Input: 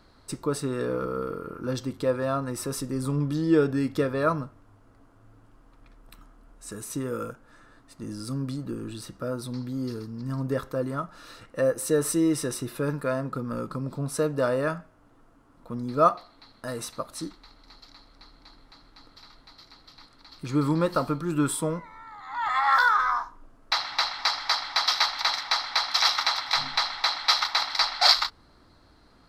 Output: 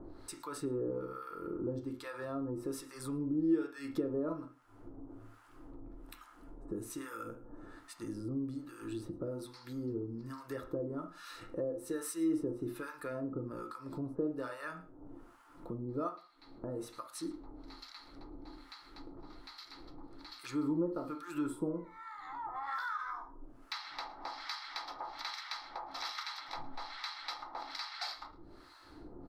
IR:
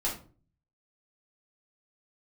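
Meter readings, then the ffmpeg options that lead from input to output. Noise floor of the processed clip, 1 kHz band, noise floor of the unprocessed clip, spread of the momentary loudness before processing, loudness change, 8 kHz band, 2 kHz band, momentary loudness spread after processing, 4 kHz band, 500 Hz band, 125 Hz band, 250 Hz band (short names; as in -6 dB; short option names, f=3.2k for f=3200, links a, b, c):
-58 dBFS, -15.5 dB, -58 dBFS, 15 LU, -13.5 dB, -15.5 dB, -16.5 dB, 18 LU, -20.0 dB, -12.0 dB, -14.0 dB, -8.0 dB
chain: -filter_complex "[0:a]highshelf=f=12k:g=4,acrossover=split=950[a][b];[a]aeval=exprs='val(0)*(1-1/2+1/2*cos(2*PI*1.2*n/s))':c=same[c];[b]aeval=exprs='val(0)*(1-1/2-1/2*cos(2*PI*1.2*n/s))':c=same[d];[c][d]amix=inputs=2:normalize=0,alimiter=limit=-13.5dB:level=0:latency=1:release=228,asplit=2[e][f];[f]adelay=110.8,volume=-22dB,highshelf=f=4k:g=-2.49[g];[e][g]amix=inputs=2:normalize=0,asplit=2[h][i];[1:a]atrim=start_sample=2205,atrim=end_sample=3528,lowpass=3k[j];[i][j]afir=irnorm=-1:irlink=0,volume=-7.5dB[k];[h][k]amix=inputs=2:normalize=0,acompressor=threshold=-52dB:ratio=2.5,equalizer=f=330:w=2.4:g=11,volume=3.5dB"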